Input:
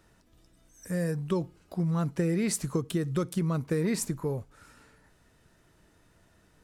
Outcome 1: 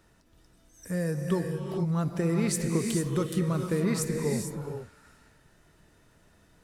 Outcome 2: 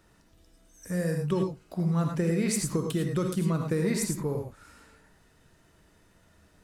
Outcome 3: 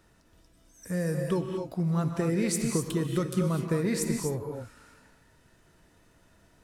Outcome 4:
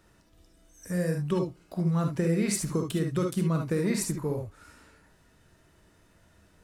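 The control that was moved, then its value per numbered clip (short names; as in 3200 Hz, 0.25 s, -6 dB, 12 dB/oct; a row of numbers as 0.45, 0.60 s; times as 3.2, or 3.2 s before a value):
non-linear reverb, gate: 480, 130, 280, 90 ms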